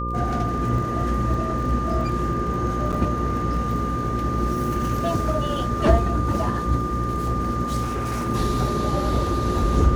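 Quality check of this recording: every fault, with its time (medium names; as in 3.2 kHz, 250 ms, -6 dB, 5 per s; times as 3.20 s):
buzz 60 Hz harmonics 9 -28 dBFS
crackle 41 per s -32 dBFS
whine 1.2 kHz -27 dBFS
2.92–2.93 s: dropout 7.2 ms
7.82–8.29 s: clipped -22 dBFS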